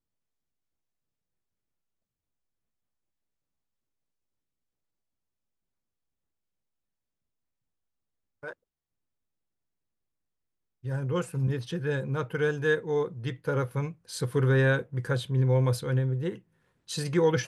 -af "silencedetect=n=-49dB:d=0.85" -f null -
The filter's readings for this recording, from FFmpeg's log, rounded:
silence_start: 0.00
silence_end: 8.43 | silence_duration: 8.43
silence_start: 8.53
silence_end: 10.84 | silence_duration: 2.31